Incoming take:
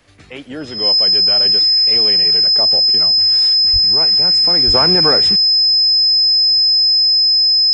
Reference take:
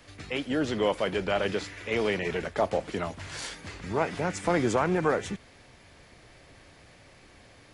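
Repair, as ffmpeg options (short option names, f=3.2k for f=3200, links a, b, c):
-filter_complex "[0:a]bandreject=f=5.1k:w=30,asplit=3[a][b][c];[a]afade=t=out:st=3.72:d=0.02[d];[b]highpass=f=140:w=0.5412,highpass=f=140:w=1.3066,afade=t=in:st=3.72:d=0.02,afade=t=out:st=3.84:d=0.02[e];[c]afade=t=in:st=3.84:d=0.02[f];[d][e][f]amix=inputs=3:normalize=0,asplit=3[g][h][i];[g]afade=t=out:st=4.66:d=0.02[j];[h]highpass=f=140:w=0.5412,highpass=f=140:w=1.3066,afade=t=in:st=4.66:d=0.02,afade=t=out:st=4.78:d=0.02[k];[i]afade=t=in:st=4.78:d=0.02[l];[j][k][l]amix=inputs=3:normalize=0,asetnsamples=n=441:p=0,asendcmd='4.74 volume volume -8dB',volume=0dB"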